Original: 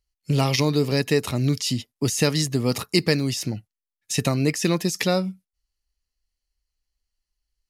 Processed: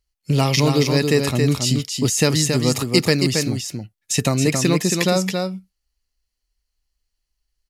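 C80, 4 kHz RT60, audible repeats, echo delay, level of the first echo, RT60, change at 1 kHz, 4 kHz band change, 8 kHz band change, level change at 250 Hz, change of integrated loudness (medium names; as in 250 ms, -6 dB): no reverb, no reverb, 1, 274 ms, -5.0 dB, no reverb, +4.5 dB, +4.5 dB, +6.5 dB, +4.0 dB, +4.0 dB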